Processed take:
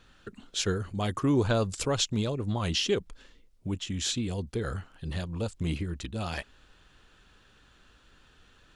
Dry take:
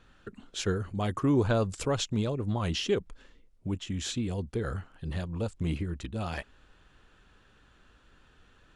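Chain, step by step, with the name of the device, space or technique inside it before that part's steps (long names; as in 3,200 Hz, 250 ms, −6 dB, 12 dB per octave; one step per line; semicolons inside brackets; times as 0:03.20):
presence and air boost (parametric band 4,400 Hz +5 dB 1.6 octaves; high-shelf EQ 9,000 Hz +6.5 dB)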